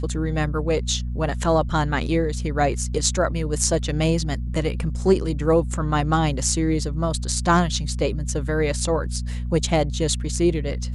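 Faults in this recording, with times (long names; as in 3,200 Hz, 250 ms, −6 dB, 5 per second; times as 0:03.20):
mains hum 60 Hz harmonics 4 −27 dBFS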